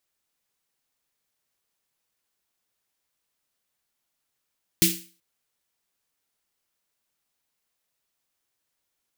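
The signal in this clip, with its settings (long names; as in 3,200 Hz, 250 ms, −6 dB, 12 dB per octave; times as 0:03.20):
synth snare length 0.38 s, tones 180 Hz, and 330 Hz, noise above 2,200 Hz, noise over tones 4 dB, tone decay 0.35 s, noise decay 0.38 s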